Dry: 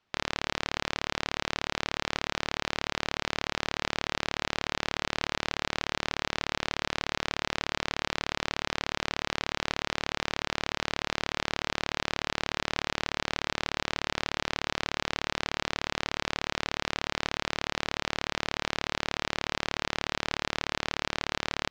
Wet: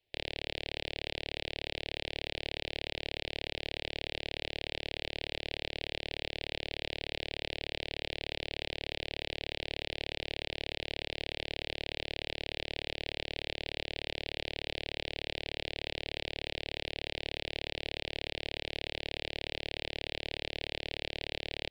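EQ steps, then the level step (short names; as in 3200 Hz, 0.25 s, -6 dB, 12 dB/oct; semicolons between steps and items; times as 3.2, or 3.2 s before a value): fixed phaser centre 520 Hz, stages 4; fixed phaser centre 2800 Hz, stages 4; 0.0 dB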